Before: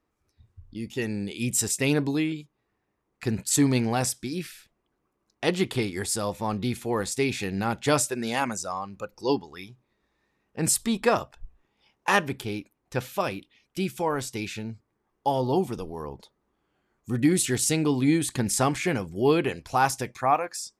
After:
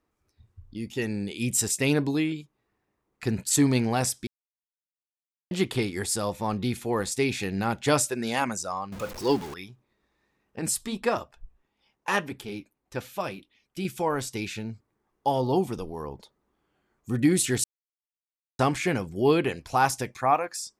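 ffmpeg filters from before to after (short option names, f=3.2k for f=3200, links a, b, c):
-filter_complex "[0:a]asettb=1/sr,asplit=3[a][b][c];[a]atrim=end=8.924[d];[b]atrim=start=8.92:end=9.54,asetpts=PTS-STARTPTS,afade=t=in:d=0.004:c=qsin,afade=t=out:st=0.616:d=0.004:c=qsin,aeval=exprs='val(0)+0.5*0.02*sgn(val(0))':c=same[e];[c]atrim=start=9.536[f];[d][e]acrossfade=d=0.004:c1=hsin:c2=qsin[g];[g][f]acrossfade=d=0.004:c1=qsin:c2=hsin,asettb=1/sr,asplit=3[h][i][j];[h]atrim=end=10.594[k];[i]atrim=start=10.59:end=13.85,asetpts=PTS-STARTPTS,afade=t=in:d=0.004:c=qsin,afade=t=out:st=3.256:d=0.004:c=qsin,flanger=delay=2.9:depth=3.9:regen=-60:speed=1.7:shape=triangular[l];[j]atrim=start=13.846[m];[k][l]acrossfade=d=0.004:c1=hsin:c2=qsin[n];[n][m]acrossfade=d=0.004:c1=qsin:c2=hsin,asplit=5[o][p][q][r][s];[o]atrim=end=4.27,asetpts=PTS-STARTPTS,afade=t=out:st=4.266:d=0.004:c=hsin[t];[p]atrim=start=4.27:end=5.51,asetpts=PTS-STARTPTS,volume=0[u];[q]atrim=start=5.51:end=17.64,asetpts=PTS-STARTPTS,afade=t=in:d=0.004:c=hsin,afade=t=out:st=12.126:d=0.004:c=hsin[v];[r]atrim=start=17.64:end=18.59,asetpts=PTS-STARTPTS,volume=0[w];[s]atrim=start=18.59,asetpts=PTS-STARTPTS,afade=t=in:d=0.004:c=hsin[x];[t][u][v][w][x]concat=n=5:v=0:a=1"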